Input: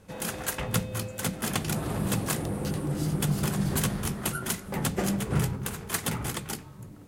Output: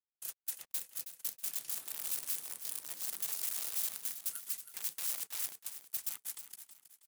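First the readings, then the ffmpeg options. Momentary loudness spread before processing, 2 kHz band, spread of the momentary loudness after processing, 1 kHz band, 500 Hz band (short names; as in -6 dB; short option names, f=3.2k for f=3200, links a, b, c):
6 LU, -17.0 dB, 8 LU, -22.5 dB, -29.0 dB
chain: -af "agate=range=-23dB:threshold=-31dB:ratio=16:detection=peak,aeval=exprs='(mod(15.8*val(0)+1,2)-1)/15.8':c=same,aderivative,acrusher=bits=7:mix=0:aa=0.5,aecho=1:1:321|642|963|1284:0.282|0.104|0.0386|0.0143,volume=-6.5dB"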